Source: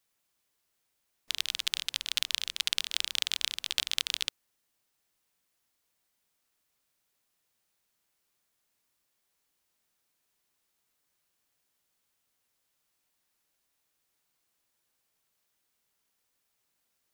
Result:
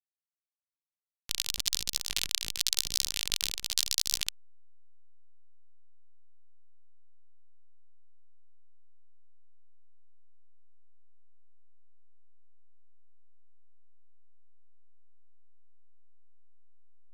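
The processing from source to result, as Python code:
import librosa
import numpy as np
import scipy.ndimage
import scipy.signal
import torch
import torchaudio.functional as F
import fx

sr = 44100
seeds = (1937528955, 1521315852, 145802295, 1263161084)

y = fx.pitch_ramps(x, sr, semitones=6.0, every_ms=1043)
y = fx.bass_treble(y, sr, bass_db=-3, treble_db=11)
y = fx.backlash(y, sr, play_db=-17.5)
y = y * librosa.db_to_amplitude(-3.5)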